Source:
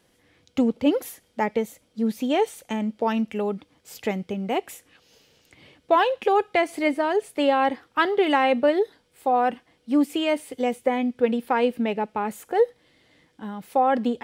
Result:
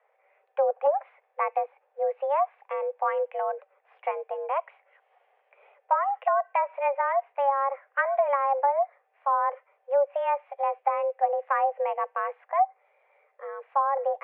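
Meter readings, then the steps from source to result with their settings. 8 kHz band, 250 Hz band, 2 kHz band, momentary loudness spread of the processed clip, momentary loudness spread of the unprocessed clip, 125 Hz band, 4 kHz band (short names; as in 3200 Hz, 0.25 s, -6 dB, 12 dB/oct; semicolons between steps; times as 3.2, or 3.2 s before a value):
under -35 dB, under -40 dB, -5.5 dB, 8 LU, 9 LU, n/a, under -20 dB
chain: mistuned SSB +280 Hz 180–2000 Hz; treble ducked by the level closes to 970 Hz, closed at -15.5 dBFS; gain -2.5 dB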